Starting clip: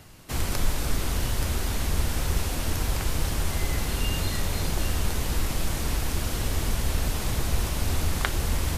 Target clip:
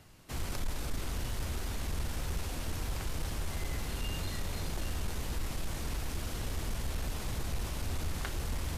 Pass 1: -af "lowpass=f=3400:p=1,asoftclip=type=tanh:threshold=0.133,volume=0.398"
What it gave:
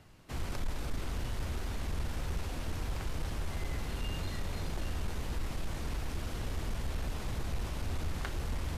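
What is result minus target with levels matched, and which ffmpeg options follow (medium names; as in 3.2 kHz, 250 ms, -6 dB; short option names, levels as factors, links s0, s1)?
8 kHz band -5.0 dB
-af "lowpass=f=11000:p=1,asoftclip=type=tanh:threshold=0.133,volume=0.398"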